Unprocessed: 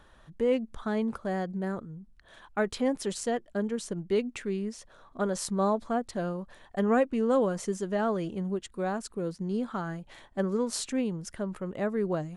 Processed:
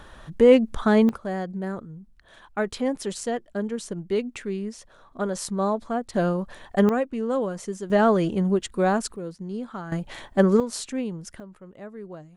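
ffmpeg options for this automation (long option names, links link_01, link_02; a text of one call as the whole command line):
ffmpeg -i in.wav -af "asetnsamples=nb_out_samples=441:pad=0,asendcmd='1.09 volume volume 2dB;6.14 volume volume 9dB;6.89 volume volume -0.5dB;7.9 volume volume 9.5dB;9.16 volume volume -1.5dB;9.92 volume volume 11dB;10.6 volume volume 0.5dB;11.4 volume volume -10dB',volume=11.5dB" out.wav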